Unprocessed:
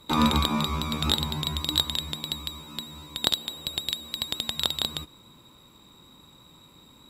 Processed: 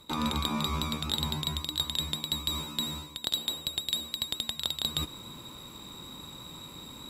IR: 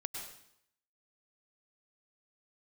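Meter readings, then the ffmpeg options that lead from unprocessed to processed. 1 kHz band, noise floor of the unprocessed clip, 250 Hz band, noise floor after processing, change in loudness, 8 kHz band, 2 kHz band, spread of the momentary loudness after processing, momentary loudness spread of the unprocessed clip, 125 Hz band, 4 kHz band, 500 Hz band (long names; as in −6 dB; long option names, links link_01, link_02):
−6.0 dB, −54 dBFS, −6.0 dB, −47 dBFS, −3.5 dB, −1.0 dB, −5.5 dB, 13 LU, 13 LU, −4.5 dB, −3.0 dB, −6.0 dB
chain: -af "equalizer=frequency=8400:width=0.5:gain=3,areverse,acompressor=threshold=-36dB:ratio=6,areverse,volume=7.5dB"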